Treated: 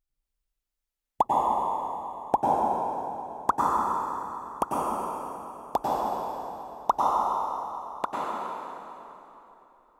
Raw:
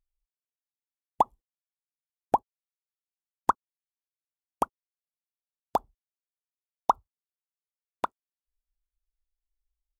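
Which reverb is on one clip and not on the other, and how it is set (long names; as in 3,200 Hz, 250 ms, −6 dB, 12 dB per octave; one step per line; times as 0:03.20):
dense smooth reverb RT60 3.3 s, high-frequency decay 0.8×, pre-delay 85 ms, DRR −6 dB
level −1 dB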